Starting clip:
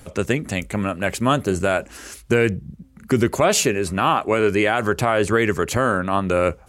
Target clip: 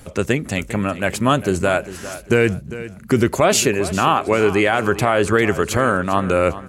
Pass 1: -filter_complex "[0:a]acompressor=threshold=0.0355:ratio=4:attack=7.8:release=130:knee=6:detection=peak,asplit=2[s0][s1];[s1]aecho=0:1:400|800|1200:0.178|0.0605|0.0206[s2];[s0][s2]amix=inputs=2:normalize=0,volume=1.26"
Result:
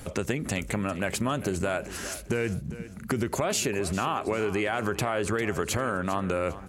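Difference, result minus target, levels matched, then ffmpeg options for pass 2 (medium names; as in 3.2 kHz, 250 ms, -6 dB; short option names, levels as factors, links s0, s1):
compression: peak gain reduction +14.5 dB
-filter_complex "[0:a]asplit=2[s0][s1];[s1]aecho=0:1:400|800|1200:0.178|0.0605|0.0206[s2];[s0][s2]amix=inputs=2:normalize=0,volume=1.26"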